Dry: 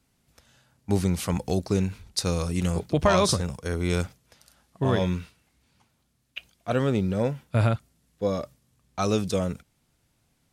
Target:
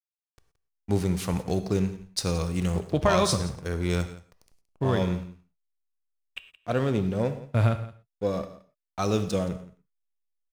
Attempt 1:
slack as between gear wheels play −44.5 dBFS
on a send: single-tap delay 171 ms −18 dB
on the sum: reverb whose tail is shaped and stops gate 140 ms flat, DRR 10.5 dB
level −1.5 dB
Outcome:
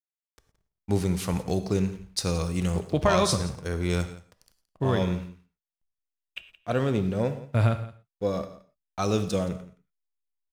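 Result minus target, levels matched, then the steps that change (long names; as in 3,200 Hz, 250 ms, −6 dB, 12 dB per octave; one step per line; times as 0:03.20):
slack as between gear wheels: distortion −6 dB
change: slack as between gear wheels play −37.5 dBFS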